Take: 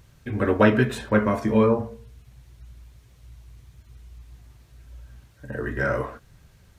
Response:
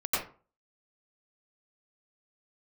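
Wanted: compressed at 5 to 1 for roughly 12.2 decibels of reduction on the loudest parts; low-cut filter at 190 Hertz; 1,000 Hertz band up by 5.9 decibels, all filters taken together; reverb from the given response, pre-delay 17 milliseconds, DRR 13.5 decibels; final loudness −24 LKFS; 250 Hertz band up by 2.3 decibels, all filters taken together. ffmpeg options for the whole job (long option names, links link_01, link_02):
-filter_complex "[0:a]highpass=190,equalizer=frequency=250:width_type=o:gain=4.5,equalizer=frequency=1000:width_type=o:gain=7,acompressor=threshold=-23dB:ratio=5,asplit=2[link_01][link_02];[1:a]atrim=start_sample=2205,adelay=17[link_03];[link_02][link_03]afir=irnorm=-1:irlink=0,volume=-23dB[link_04];[link_01][link_04]amix=inputs=2:normalize=0,volume=4.5dB"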